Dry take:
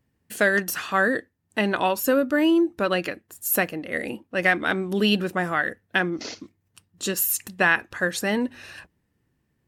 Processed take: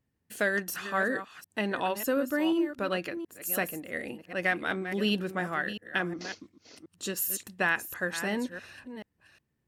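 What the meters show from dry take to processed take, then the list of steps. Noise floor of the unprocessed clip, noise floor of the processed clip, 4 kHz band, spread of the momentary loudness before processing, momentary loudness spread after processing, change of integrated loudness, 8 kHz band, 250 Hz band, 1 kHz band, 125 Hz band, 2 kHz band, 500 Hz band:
-73 dBFS, -78 dBFS, -7.0 dB, 11 LU, 11 LU, -7.0 dB, -7.0 dB, -7.0 dB, -7.0 dB, -7.0 dB, -7.0 dB, -7.0 dB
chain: chunks repeated in reverse 361 ms, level -10.5 dB; trim -7.5 dB

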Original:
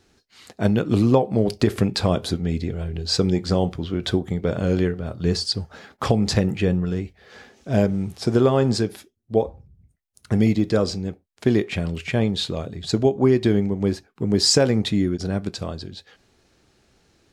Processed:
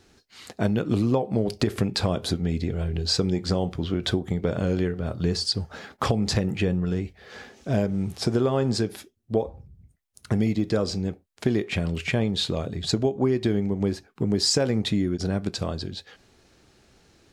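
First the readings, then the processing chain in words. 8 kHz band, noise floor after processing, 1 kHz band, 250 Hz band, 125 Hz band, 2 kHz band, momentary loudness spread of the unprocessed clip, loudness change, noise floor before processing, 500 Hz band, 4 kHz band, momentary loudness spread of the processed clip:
-3.5 dB, -63 dBFS, -4.0 dB, -4.0 dB, -3.0 dB, -2.0 dB, 10 LU, -3.5 dB, -65 dBFS, -4.5 dB, -2.0 dB, 7 LU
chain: compression 2.5:1, threshold -25 dBFS, peak gain reduction 9.5 dB; trim +2.5 dB

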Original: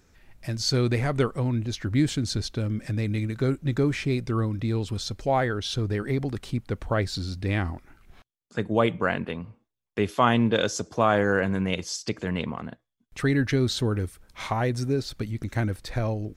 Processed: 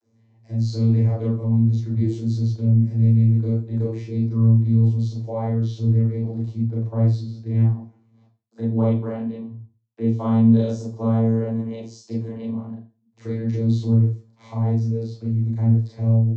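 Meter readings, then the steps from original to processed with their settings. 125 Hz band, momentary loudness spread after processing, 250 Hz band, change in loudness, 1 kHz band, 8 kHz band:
+9.0 dB, 13 LU, +5.5 dB, +5.5 dB, -9.0 dB, under -10 dB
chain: vocoder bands 32, saw 113 Hz; high-order bell 2 kHz -9 dB; Schroeder reverb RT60 0.33 s, combs from 27 ms, DRR -5.5 dB

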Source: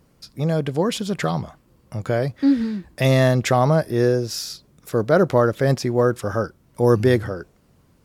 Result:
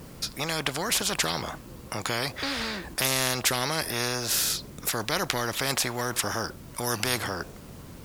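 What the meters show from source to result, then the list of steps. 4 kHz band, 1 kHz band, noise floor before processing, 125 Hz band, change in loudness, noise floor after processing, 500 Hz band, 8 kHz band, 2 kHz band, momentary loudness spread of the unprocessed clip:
+5.0 dB, -5.5 dB, -59 dBFS, -15.0 dB, -7.0 dB, -45 dBFS, -14.0 dB, +8.5 dB, 0.0 dB, 13 LU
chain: bit crusher 11-bit; spectrum-flattening compressor 4:1

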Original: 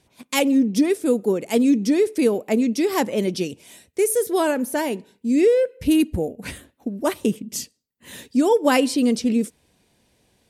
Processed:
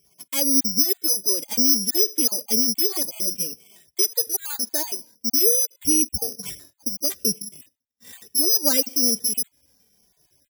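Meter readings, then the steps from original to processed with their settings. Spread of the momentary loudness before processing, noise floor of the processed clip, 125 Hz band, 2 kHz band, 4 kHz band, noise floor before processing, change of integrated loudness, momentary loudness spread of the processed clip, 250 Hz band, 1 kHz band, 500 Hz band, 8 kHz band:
13 LU, -72 dBFS, -10.5 dB, -11.5 dB, +8.5 dB, -66 dBFS, +1.5 dB, 12 LU, -11.0 dB, -15.0 dB, -11.5 dB, +12.5 dB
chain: random holes in the spectrogram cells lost 20%; in parallel at -0.5 dB: compression, threshold -29 dBFS, peak gain reduction 15.5 dB; on the sum: careless resampling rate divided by 8×, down filtered, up zero stuff; endless flanger 2.2 ms -1.1 Hz; trim -9.5 dB

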